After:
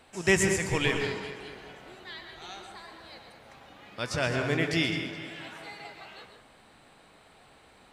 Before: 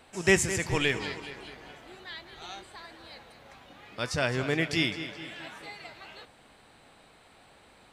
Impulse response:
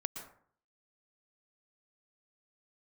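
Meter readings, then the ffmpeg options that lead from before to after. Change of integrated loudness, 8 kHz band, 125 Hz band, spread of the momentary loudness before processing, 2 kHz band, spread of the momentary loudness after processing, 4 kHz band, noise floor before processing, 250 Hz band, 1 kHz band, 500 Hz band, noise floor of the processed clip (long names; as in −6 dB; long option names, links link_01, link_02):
+0.5 dB, −0.5 dB, +1.0 dB, 22 LU, 0.0 dB, 21 LU, −0.5 dB, −58 dBFS, +1.0 dB, +0.5 dB, +0.5 dB, −58 dBFS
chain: -filter_complex "[1:a]atrim=start_sample=2205,asetrate=42336,aresample=44100[link_01];[0:a][link_01]afir=irnorm=-1:irlink=0"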